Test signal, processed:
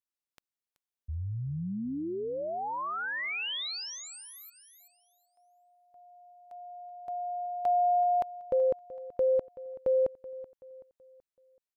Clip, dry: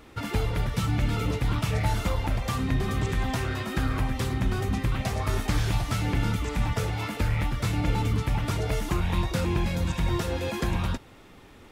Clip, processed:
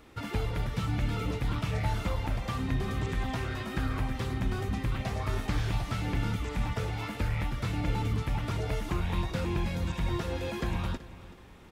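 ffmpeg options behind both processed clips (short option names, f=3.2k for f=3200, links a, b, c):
-filter_complex "[0:a]asplit=2[a][b];[b]adelay=379,lowpass=f=4.7k:p=1,volume=-17dB,asplit=2[c][d];[d]adelay=379,lowpass=f=4.7k:p=1,volume=0.43,asplit=2[e][f];[f]adelay=379,lowpass=f=4.7k:p=1,volume=0.43,asplit=2[g][h];[h]adelay=379,lowpass=f=4.7k:p=1,volume=0.43[i];[a][c][e][g][i]amix=inputs=5:normalize=0,acrossover=split=4700[j][k];[k]acompressor=threshold=-47dB:ratio=4:attack=1:release=60[l];[j][l]amix=inputs=2:normalize=0,volume=-4.5dB"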